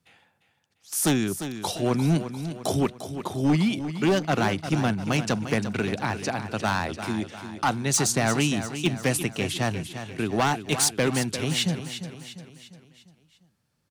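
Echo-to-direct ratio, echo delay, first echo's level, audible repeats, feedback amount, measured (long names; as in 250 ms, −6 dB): −9.5 dB, 349 ms, −10.5 dB, 4, 48%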